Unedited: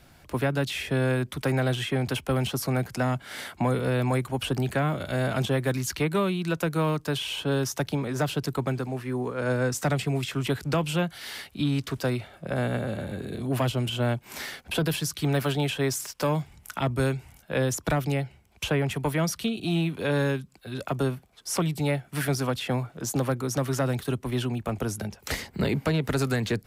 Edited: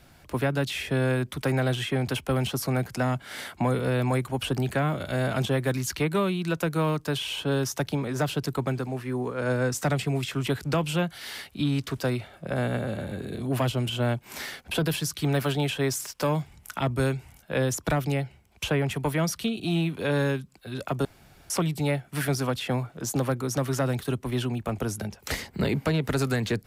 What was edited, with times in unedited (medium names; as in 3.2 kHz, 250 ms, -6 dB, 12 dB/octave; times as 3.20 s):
21.05–21.50 s: room tone